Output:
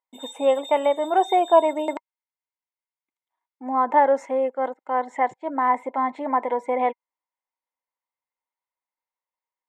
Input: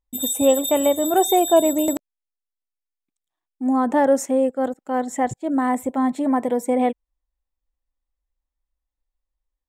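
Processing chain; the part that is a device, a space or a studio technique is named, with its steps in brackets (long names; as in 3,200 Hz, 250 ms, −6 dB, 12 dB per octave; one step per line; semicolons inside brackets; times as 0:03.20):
tin-can telephone (band-pass filter 510–2,500 Hz; hollow resonant body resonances 950/2,100 Hz, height 13 dB, ringing for 35 ms)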